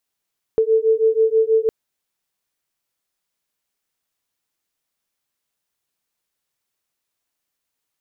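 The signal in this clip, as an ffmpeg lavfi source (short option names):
-f lavfi -i "aevalsrc='0.15*(sin(2*PI*441*t)+sin(2*PI*447.2*t))':d=1.11:s=44100"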